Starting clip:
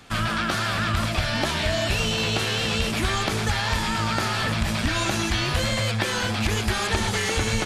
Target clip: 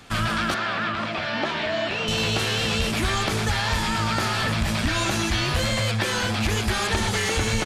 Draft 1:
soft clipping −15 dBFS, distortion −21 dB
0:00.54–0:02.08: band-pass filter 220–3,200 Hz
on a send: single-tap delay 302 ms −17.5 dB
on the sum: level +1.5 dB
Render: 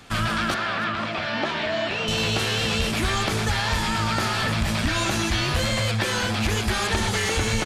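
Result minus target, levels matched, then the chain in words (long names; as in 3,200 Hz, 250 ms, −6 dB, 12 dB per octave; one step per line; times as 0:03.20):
echo-to-direct +11 dB
soft clipping −15 dBFS, distortion −21 dB
0:00.54–0:02.08: band-pass filter 220–3,200 Hz
on a send: single-tap delay 302 ms −28.5 dB
on the sum: level +1.5 dB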